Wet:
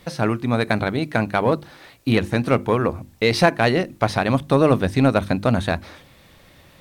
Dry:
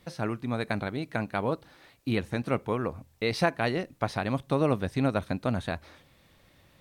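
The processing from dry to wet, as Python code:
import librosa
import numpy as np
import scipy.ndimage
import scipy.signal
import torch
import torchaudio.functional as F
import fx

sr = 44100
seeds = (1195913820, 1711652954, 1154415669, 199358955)

p1 = fx.hum_notches(x, sr, base_hz=50, count=7)
p2 = np.clip(p1, -10.0 ** (-22.5 / 20.0), 10.0 ** (-22.5 / 20.0))
p3 = p1 + (p2 * librosa.db_to_amplitude(-5.5))
y = p3 * librosa.db_to_amplitude(7.0)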